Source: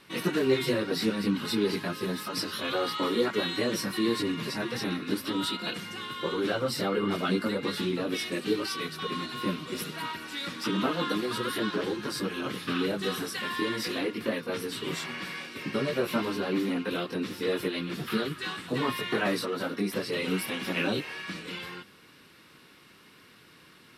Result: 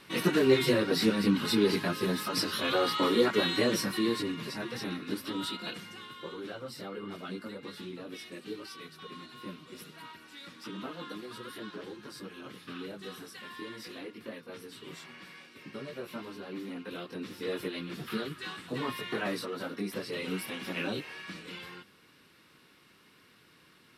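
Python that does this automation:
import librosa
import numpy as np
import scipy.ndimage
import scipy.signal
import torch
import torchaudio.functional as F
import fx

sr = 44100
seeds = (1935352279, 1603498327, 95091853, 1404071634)

y = fx.gain(x, sr, db=fx.line((3.67, 1.5), (4.38, -5.0), (5.66, -5.0), (6.48, -12.5), (16.46, -12.5), (17.54, -5.5)))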